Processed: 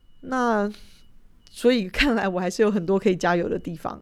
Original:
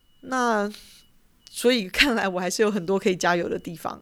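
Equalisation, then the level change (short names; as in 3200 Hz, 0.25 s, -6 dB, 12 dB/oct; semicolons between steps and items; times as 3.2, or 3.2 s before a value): tilt -2.5 dB/oct; low shelf 370 Hz -3.5 dB; 0.0 dB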